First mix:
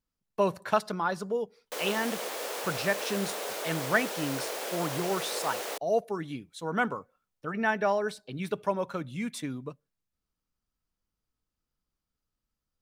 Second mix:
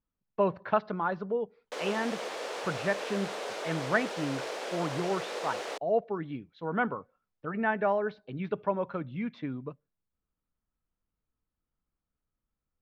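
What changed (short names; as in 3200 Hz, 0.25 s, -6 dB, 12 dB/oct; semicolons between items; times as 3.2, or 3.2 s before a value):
speech: add Gaussian blur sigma 2.7 samples; master: add air absorption 85 m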